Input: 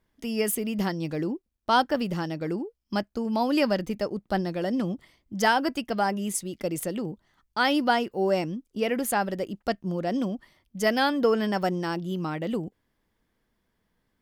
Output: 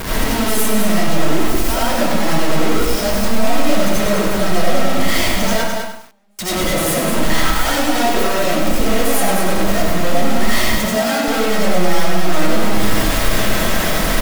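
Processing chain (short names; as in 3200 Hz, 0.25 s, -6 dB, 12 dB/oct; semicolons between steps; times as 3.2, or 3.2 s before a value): infinite clipping; flange 0.24 Hz, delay 9.5 ms, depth 4.3 ms, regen -61%; 5.53–6.39 gate -27 dBFS, range -45 dB; echo 0.209 s -7.5 dB; reverb RT60 0.50 s, pre-delay 45 ms, DRR -7.5 dB; in parallel at +0.5 dB: limiter -15.5 dBFS, peak gain reduction 7.5 dB; 10.8–11.28 on the sum: Chebyshev high-pass 160 Hz; lo-fi delay 0.1 s, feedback 35%, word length 6-bit, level -7 dB; gain +1 dB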